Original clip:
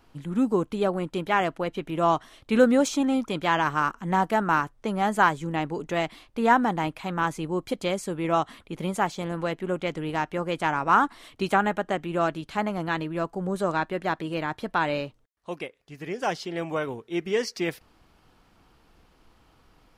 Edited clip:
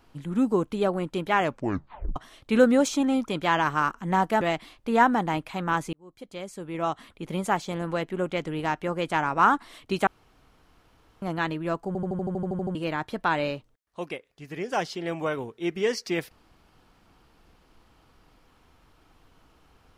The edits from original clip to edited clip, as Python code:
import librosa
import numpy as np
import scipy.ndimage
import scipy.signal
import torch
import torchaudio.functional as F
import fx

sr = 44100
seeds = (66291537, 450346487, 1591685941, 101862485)

y = fx.edit(x, sr, fx.tape_stop(start_s=1.41, length_s=0.75),
    fx.cut(start_s=4.41, length_s=1.5),
    fx.fade_in_span(start_s=7.43, length_s=1.51),
    fx.room_tone_fill(start_s=11.57, length_s=1.15),
    fx.stutter_over(start_s=13.37, slice_s=0.08, count=11), tone=tone)